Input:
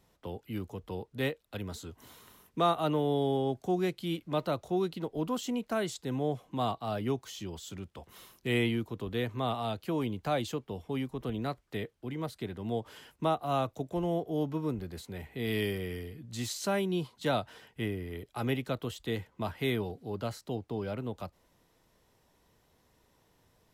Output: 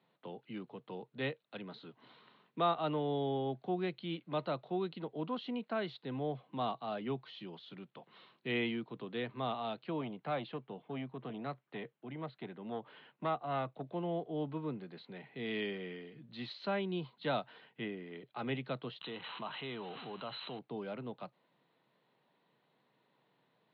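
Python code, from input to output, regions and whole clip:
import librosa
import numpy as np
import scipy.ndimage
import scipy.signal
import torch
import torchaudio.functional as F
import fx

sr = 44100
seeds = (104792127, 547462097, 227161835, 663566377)

y = fx.chain(x, sr, fx.lowpass(hz=3300.0, slope=12),
    fx.transformer_sat(knee_hz=590.0), at=(10.01, 13.83))
y = fx.chain(y, sr, fx.crossing_spikes(level_db=-30.0),
    fx.cheby_ripple(hz=4100.0, ripple_db=9),
    fx.env_flatten(amount_pct=70), at=(19.01, 20.59))
y = scipy.signal.sosfilt(scipy.signal.cheby1(5, 1.0, [130.0, 4200.0], 'bandpass', fs=sr, output='sos'), y)
y = fx.peak_eq(y, sr, hz=1600.0, db=3.0, octaves=2.8)
y = y * 10.0 ** (-6.0 / 20.0)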